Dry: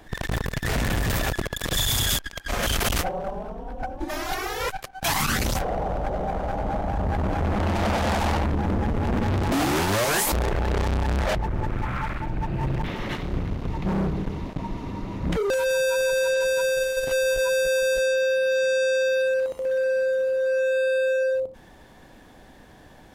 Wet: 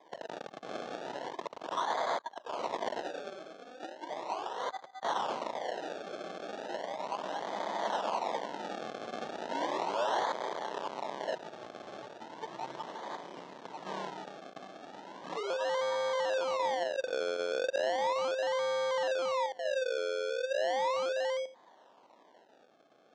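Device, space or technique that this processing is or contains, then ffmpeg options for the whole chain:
circuit-bent sampling toy: -af "highpass=f=140:w=0.5412,highpass=f=140:w=1.3066,acrusher=samples=31:mix=1:aa=0.000001:lfo=1:lforange=31:lforate=0.36,highpass=470,equalizer=f=640:t=q:w=4:g=4,equalizer=f=950:t=q:w=4:g=7,equalizer=f=1.4k:t=q:w=4:g=-4,equalizer=f=2.4k:t=q:w=4:g=-7,equalizer=f=4.8k:t=q:w=4:g=-5,lowpass=f=5.6k:w=0.5412,lowpass=f=5.6k:w=1.3066,volume=-8.5dB"

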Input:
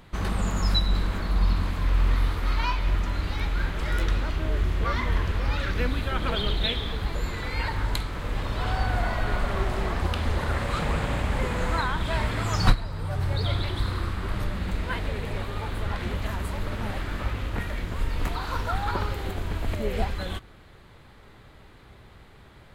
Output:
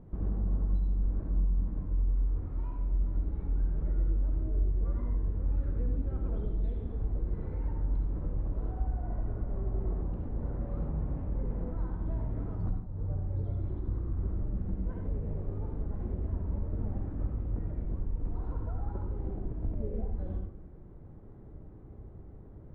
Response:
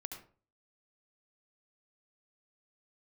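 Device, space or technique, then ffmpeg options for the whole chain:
television next door: -filter_complex "[0:a]acompressor=threshold=-33dB:ratio=6,lowpass=410[a];[1:a]atrim=start_sample=2205[b];[a][b]afir=irnorm=-1:irlink=0,volume=5.5dB"

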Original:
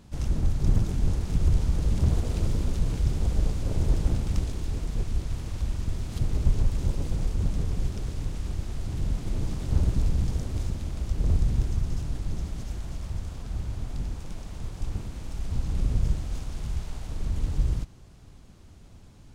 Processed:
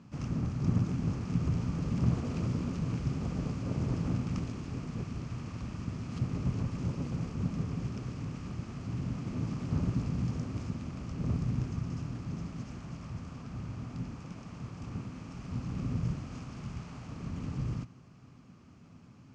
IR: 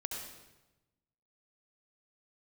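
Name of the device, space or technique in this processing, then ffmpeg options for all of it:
car door speaker: -af "highpass=110,equalizer=f=120:t=q:w=4:g=7,equalizer=f=170:t=q:w=4:g=7,equalizer=f=250:t=q:w=4:g=9,equalizer=f=1.2k:t=q:w=4:g=9,equalizer=f=2.5k:t=q:w=4:g=5,equalizer=f=3.7k:t=q:w=4:g=-8,lowpass=f=6.5k:w=0.5412,lowpass=f=6.5k:w=1.3066,volume=-5dB"

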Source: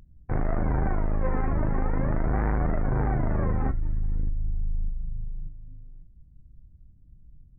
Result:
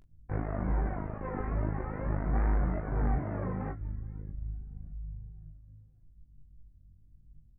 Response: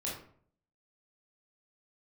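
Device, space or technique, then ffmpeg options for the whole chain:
double-tracked vocal: -filter_complex "[0:a]asplit=2[a][b];[b]adelay=21,volume=-4dB[c];[a][c]amix=inputs=2:normalize=0,flanger=delay=18:depth=4:speed=2.4,asettb=1/sr,asplit=3[d][e][f];[d]atrim=end=3.184[g];[e]atrim=start=3.18:end=3.81,asetpts=PTS-STARTPTS,afade=t=in:d=0.004:c=qsin,afade=t=out:st=0.626:d=0.004:c=qsin,highpass=92[h];[f]atrim=start=3.806[i];[g][h]acrossfade=d=0.004:c1=hsin:c2=qsin[j];[j][i]acrossfade=d=0.004:c1=qsin:c2=hsin,volume=-4.5dB"

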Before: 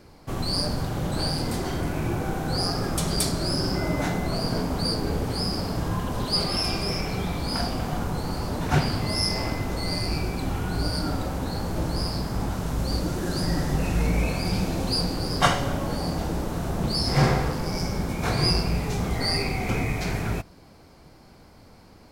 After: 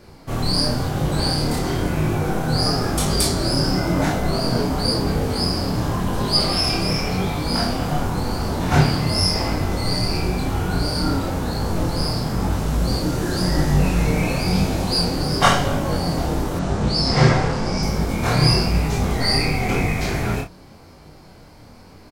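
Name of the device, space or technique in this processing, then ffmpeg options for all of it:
double-tracked vocal: -filter_complex "[0:a]asplit=2[a][b];[b]adelay=33,volume=-5dB[c];[a][c]amix=inputs=2:normalize=0,flanger=delay=19.5:depth=7:speed=0.95,asettb=1/sr,asplit=3[d][e][f];[d]atrim=end=16.594[g];[e]atrim=start=16.59:end=17.83,asetpts=PTS-STARTPTS,afade=t=in:d=0.004:c=qsin,afade=t=out:st=1.236:d=0.004:c=qsin,lowpass=f=8.2k:w=0.5412,lowpass=f=8.2k:w=1.3066[h];[f]atrim=start=17.826[i];[g][h]acrossfade=d=0.004:c1=hsin:c2=qsin[j];[j][i]acrossfade=d=0.004:c1=qsin:c2=hsin,volume=7.5dB"

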